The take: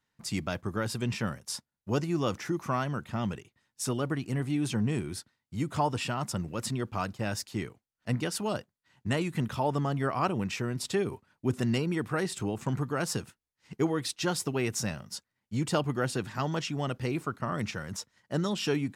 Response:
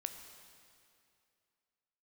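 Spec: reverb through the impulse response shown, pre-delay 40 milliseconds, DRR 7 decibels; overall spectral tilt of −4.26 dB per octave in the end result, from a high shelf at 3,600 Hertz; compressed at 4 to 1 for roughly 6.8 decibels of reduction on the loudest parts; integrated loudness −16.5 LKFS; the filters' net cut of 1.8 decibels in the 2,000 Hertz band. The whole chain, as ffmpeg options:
-filter_complex "[0:a]equalizer=frequency=2000:width_type=o:gain=-5,highshelf=frequency=3600:gain=8,acompressor=threshold=-31dB:ratio=4,asplit=2[link_01][link_02];[1:a]atrim=start_sample=2205,adelay=40[link_03];[link_02][link_03]afir=irnorm=-1:irlink=0,volume=-5.5dB[link_04];[link_01][link_04]amix=inputs=2:normalize=0,volume=18.5dB"

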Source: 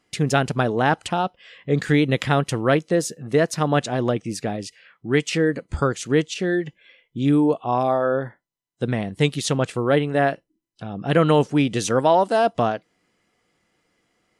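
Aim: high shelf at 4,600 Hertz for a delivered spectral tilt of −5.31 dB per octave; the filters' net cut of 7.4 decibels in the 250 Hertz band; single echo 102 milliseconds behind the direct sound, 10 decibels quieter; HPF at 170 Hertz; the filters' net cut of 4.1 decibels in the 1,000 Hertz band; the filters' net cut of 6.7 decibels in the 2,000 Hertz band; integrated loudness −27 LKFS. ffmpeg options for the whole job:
ffmpeg -i in.wav -af "highpass=170,equalizer=frequency=250:width_type=o:gain=-8.5,equalizer=frequency=1000:width_type=o:gain=-3.5,equalizer=frequency=2000:width_type=o:gain=-6.5,highshelf=frequency=4600:gain=-5.5,aecho=1:1:102:0.316,volume=-1dB" out.wav

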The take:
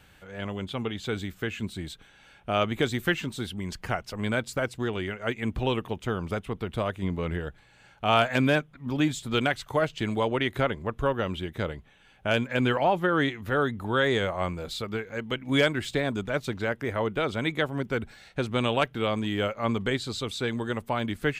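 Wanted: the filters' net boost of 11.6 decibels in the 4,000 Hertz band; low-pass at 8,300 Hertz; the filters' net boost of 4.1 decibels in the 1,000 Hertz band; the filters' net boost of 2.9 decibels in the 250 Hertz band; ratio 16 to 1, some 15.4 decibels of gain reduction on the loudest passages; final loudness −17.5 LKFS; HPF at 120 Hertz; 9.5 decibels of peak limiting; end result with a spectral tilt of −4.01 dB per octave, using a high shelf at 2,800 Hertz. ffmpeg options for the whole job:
ffmpeg -i in.wav -af "highpass=120,lowpass=8300,equalizer=frequency=250:width_type=o:gain=3.5,equalizer=frequency=1000:width_type=o:gain=3.5,highshelf=frequency=2800:gain=8.5,equalizer=frequency=4000:width_type=o:gain=8.5,acompressor=threshold=-27dB:ratio=16,volume=17.5dB,alimiter=limit=-6dB:level=0:latency=1" out.wav

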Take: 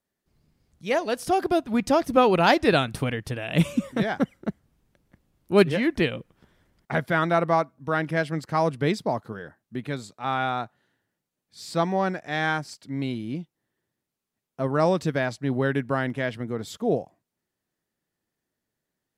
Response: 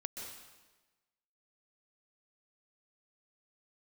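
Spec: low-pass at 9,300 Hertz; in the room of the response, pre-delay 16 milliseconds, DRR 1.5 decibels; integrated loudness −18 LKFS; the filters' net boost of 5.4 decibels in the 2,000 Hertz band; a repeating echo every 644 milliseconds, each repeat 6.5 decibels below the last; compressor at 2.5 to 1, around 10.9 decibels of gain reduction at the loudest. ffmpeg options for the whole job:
-filter_complex "[0:a]lowpass=9300,equalizer=frequency=2000:width_type=o:gain=7,acompressor=threshold=-28dB:ratio=2.5,aecho=1:1:644|1288|1932|2576|3220|3864:0.473|0.222|0.105|0.0491|0.0231|0.0109,asplit=2[link_01][link_02];[1:a]atrim=start_sample=2205,adelay=16[link_03];[link_02][link_03]afir=irnorm=-1:irlink=0,volume=-0.5dB[link_04];[link_01][link_04]amix=inputs=2:normalize=0,volume=10dB"

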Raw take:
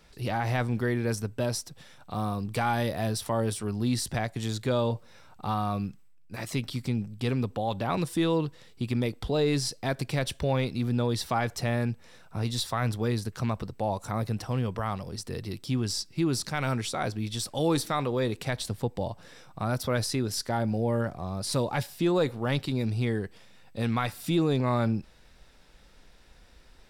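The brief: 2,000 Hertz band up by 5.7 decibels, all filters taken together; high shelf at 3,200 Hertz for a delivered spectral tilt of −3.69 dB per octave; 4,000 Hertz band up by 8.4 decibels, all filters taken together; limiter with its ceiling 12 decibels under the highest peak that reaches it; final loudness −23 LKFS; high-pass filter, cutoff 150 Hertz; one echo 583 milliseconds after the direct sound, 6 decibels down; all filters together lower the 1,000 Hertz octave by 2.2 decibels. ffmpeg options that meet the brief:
ffmpeg -i in.wav -af "highpass=150,equalizer=frequency=1000:width_type=o:gain=-5.5,equalizer=frequency=2000:width_type=o:gain=5.5,highshelf=frequency=3200:gain=7.5,equalizer=frequency=4000:width_type=o:gain=3.5,alimiter=limit=-21dB:level=0:latency=1,aecho=1:1:583:0.501,volume=9dB" out.wav

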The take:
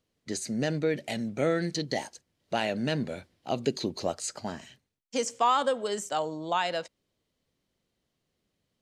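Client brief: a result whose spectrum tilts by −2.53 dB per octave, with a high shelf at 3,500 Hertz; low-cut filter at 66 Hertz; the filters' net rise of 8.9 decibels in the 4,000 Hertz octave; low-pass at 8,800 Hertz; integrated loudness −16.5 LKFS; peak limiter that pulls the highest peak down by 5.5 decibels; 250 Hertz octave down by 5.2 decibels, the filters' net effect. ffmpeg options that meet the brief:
ffmpeg -i in.wav -af "highpass=66,lowpass=8800,equalizer=frequency=250:width_type=o:gain=-7,highshelf=frequency=3500:gain=3.5,equalizer=frequency=4000:width_type=o:gain=9,volume=14dB,alimiter=limit=-2.5dB:level=0:latency=1" out.wav

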